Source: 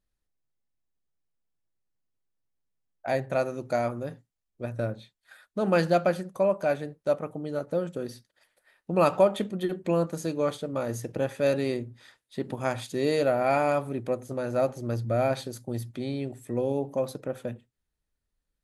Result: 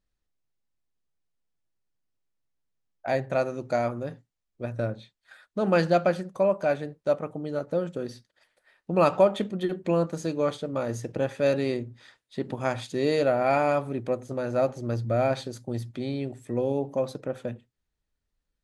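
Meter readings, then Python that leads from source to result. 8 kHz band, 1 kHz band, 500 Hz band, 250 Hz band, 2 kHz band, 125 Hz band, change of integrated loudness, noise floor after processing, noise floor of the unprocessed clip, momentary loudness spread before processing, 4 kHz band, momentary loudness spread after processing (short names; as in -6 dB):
-2.0 dB, +1.0 dB, +1.0 dB, +1.0 dB, +1.0 dB, +1.0 dB, +1.0 dB, -83 dBFS, -83 dBFS, 13 LU, +0.5 dB, 13 LU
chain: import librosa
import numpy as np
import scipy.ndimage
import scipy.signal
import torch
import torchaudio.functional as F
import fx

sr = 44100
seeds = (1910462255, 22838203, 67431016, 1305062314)

y = scipy.signal.sosfilt(scipy.signal.butter(2, 7500.0, 'lowpass', fs=sr, output='sos'), x)
y = y * librosa.db_to_amplitude(1.0)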